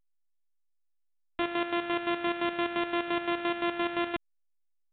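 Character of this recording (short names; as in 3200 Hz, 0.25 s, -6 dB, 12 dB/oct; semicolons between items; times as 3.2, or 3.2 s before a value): a buzz of ramps at a fixed pitch in blocks of 128 samples; chopped level 5.8 Hz, depth 65%, duty 45%; a quantiser's noise floor 8-bit, dither none; A-law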